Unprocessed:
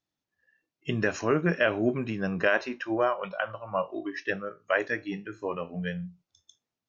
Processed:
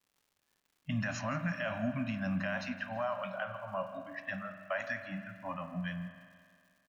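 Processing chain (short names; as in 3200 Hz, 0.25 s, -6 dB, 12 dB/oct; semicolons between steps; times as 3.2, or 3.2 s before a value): Chebyshev band-stop 280–560 Hz, order 5; low-pass opened by the level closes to 610 Hz, open at -26 dBFS; limiter -23.5 dBFS, peak gain reduction 11 dB; crackle 250/s -56 dBFS; feedback echo 0.167 s, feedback 46%, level -18.5 dB; spring tank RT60 2.2 s, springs 42 ms, chirp 60 ms, DRR 9 dB; gain -2.5 dB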